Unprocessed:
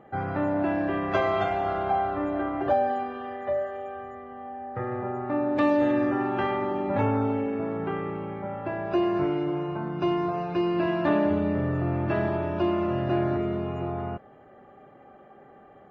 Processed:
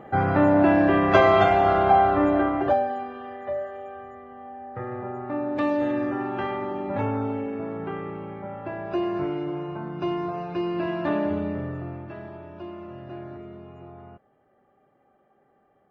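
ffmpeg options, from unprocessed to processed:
-af "volume=8dB,afade=t=out:st=2.29:d=0.59:silence=0.316228,afade=t=out:st=11.39:d=0.73:silence=0.281838"

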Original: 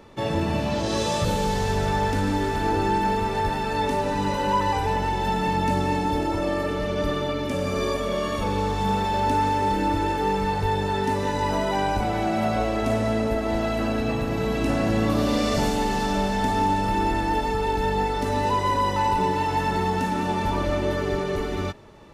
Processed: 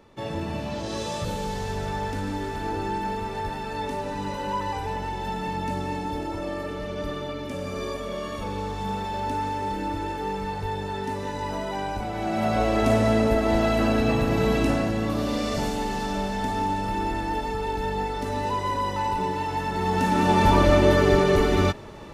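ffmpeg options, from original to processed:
-af "volume=14dB,afade=t=in:st=12.13:d=0.68:silence=0.354813,afade=t=out:st=14.53:d=0.4:silence=0.446684,afade=t=in:st=19.74:d=0.74:silence=0.281838"

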